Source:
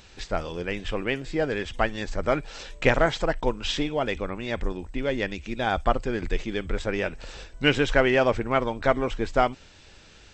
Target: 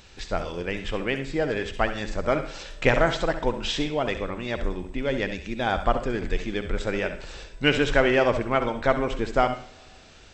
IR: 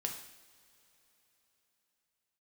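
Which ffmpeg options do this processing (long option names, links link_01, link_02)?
-filter_complex "[0:a]asplit=2[link_01][link_02];[1:a]atrim=start_sample=2205,asetrate=61740,aresample=44100,adelay=66[link_03];[link_02][link_03]afir=irnorm=-1:irlink=0,volume=-6.5dB[link_04];[link_01][link_04]amix=inputs=2:normalize=0"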